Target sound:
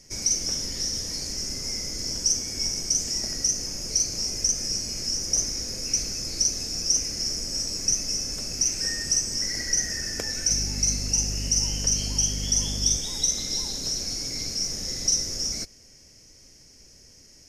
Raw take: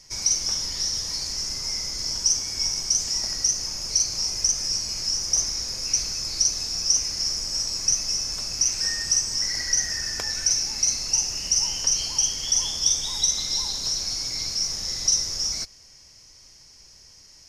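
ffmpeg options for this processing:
-filter_complex "[0:a]equalizer=f=250:t=o:w=1:g=6,equalizer=f=500:t=o:w=1:g=4,equalizer=f=1k:t=o:w=1:g=-10,equalizer=f=4k:t=o:w=1:g=-8,asettb=1/sr,asplit=3[a][b][c];[a]atrim=end=10.504[d];[b]atrim=start=10.5:end=12.97,asetpts=PTS-STARTPTS,afade=t=in:d=0.004:c=qsin,afade=t=out:st=2.466:d=0.004:c=qsin,aeval=exprs='val(0)+0.0251*(sin(2*PI*50*n/s)+sin(2*PI*2*50*n/s)/2+sin(2*PI*3*50*n/s)/3+sin(2*PI*4*50*n/s)/4+sin(2*PI*5*50*n/s)/5)':c=same[e];[c]atrim=start=12.966[f];[d][e]acrossfade=d=0.004:c1=hsin:c2=qsin[g];[g][f]acrossfade=d=0.004:c1=qsin:c2=hsin,volume=2dB"

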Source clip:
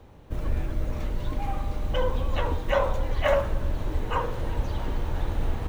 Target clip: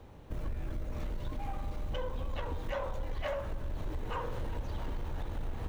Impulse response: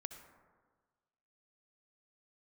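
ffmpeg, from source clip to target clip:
-af "acompressor=threshold=-28dB:ratio=6,asoftclip=type=tanh:threshold=-25.5dB,volume=-2dB"

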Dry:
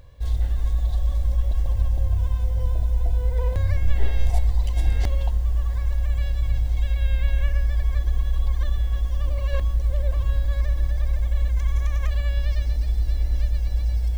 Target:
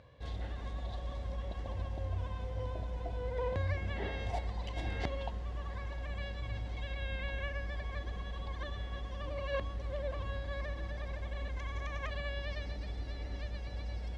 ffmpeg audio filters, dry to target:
-af "highpass=140,lowpass=3.6k,volume=-2dB"

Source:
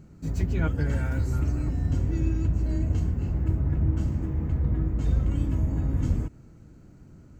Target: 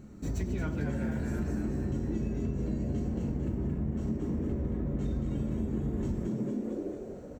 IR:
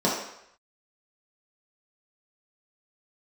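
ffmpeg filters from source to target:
-filter_complex "[0:a]asplit=7[a][b][c][d][e][f][g];[b]adelay=225,afreqshift=82,volume=-4dB[h];[c]adelay=450,afreqshift=164,volume=-10.4dB[i];[d]adelay=675,afreqshift=246,volume=-16.8dB[j];[e]adelay=900,afreqshift=328,volume=-23.1dB[k];[f]adelay=1125,afreqshift=410,volume=-29.5dB[l];[g]adelay=1350,afreqshift=492,volume=-35.9dB[m];[a][h][i][j][k][l][m]amix=inputs=7:normalize=0,asplit=2[n][o];[1:a]atrim=start_sample=2205,highshelf=f=2.3k:g=10.5[p];[o][p]afir=irnorm=-1:irlink=0,volume=-22dB[q];[n][q]amix=inputs=2:normalize=0,acompressor=threshold=-29dB:ratio=6"

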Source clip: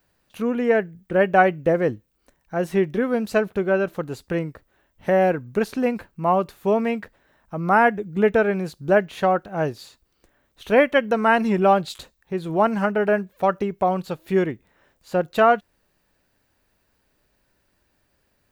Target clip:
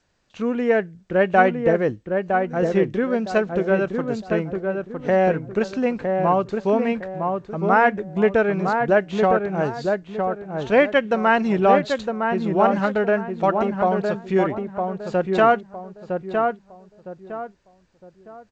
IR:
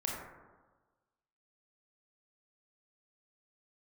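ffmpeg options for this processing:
-filter_complex "[0:a]asplit=2[a][b];[b]adelay=960,lowpass=f=1.5k:p=1,volume=-4dB,asplit=2[c][d];[d]adelay=960,lowpass=f=1.5k:p=1,volume=0.33,asplit=2[e][f];[f]adelay=960,lowpass=f=1.5k:p=1,volume=0.33,asplit=2[g][h];[h]adelay=960,lowpass=f=1.5k:p=1,volume=0.33[i];[a][c][e][g][i]amix=inputs=5:normalize=0" -ar 16000 -c:a g722

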